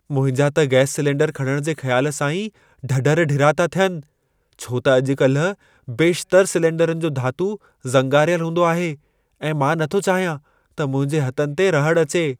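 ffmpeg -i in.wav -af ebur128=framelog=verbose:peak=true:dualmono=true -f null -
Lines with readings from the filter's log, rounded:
Integrated loudness:
  I:         -16.2 LUFS
  Threshold: -26.7 LUFS
Loudness range:
  LRA:         1.7 LU
  Threshold: -36.8 LUFS
  LRA low:   -17.7 LUFS
  LRA high:  -16.0 LUFS
True peak:
  Peak:       -1.4 dBFS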